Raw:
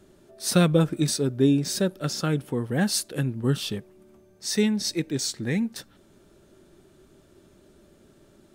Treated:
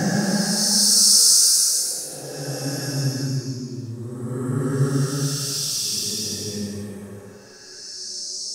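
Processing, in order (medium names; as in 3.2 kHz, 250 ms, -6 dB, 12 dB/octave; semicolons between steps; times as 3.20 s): resonant high shelf 4.3 kHz +9 dB, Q 3; on a send: repeats whose band climbs or falls 354 ms, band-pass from 740 Hz, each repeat 1.4 oct, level -8.5 dB; on the sum: dynamic bell 1.3 kHz, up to +5 dB, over -51 dBFS, Q 6.3; Paulstretch 6.8×, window 0.25 s, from 2.78 s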